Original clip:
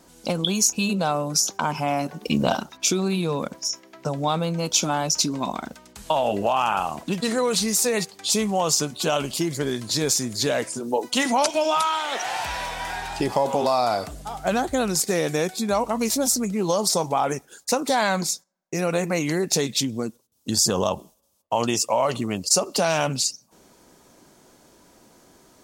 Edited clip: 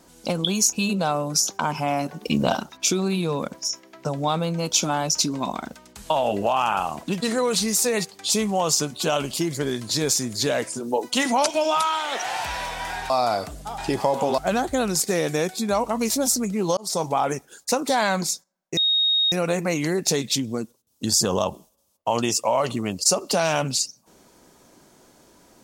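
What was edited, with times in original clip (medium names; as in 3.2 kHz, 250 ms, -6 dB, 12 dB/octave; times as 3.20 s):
13.10–13.70 s: move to 14.38 s
16.77–17.03 s: fade in
18.77 s: add tone 3.74 kHz -17 dBFS 0.55 s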